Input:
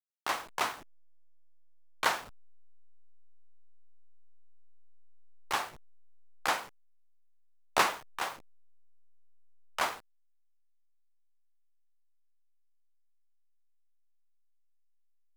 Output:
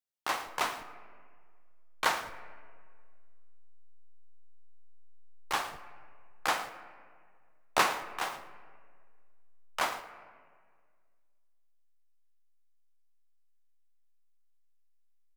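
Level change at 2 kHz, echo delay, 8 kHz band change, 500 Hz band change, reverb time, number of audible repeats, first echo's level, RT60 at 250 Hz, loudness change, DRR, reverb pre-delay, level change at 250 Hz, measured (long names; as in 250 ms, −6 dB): +0.5 dB, 112 ms, 0.0 dB, +0.5 dB, 1.8 s, 1, −15.5 dB, 2.0 s, 0.0 dB, 9.5 dB, 4 ms, +1.0 dB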